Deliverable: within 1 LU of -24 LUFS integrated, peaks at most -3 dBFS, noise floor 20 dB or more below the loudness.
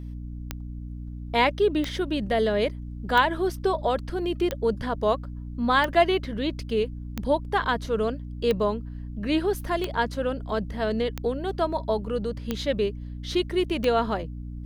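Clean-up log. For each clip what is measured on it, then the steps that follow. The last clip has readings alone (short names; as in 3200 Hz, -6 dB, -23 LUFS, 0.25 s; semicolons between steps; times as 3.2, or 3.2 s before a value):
clicks 11; hum 60 Hz; harmonics up to 300 Hz; hum level -33 dBFS; loudness -26.0 LUFS; peak -7.0 dBFS; loudness target -24.0 LUFS
-> de-click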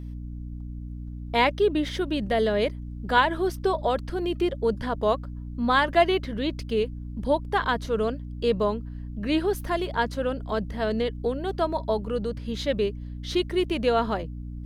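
clicks 0; hum 60 Hz; harmonics up to 300 Hz; hum level -33 dBFS
-> notches 60/120/180/240/300 Hz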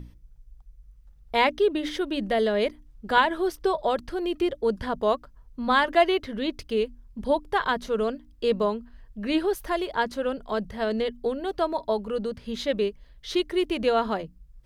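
hum none; loudness -26.5 LUFS; peak -7.5 dBFS; loudness target -24.0 LUFS
-> gain +2.5 dB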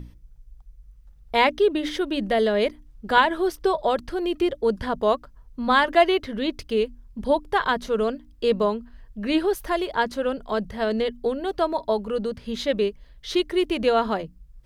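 loudness -24.0 LUFS; peak -5.0 dBFS; noise floor -50 dBFS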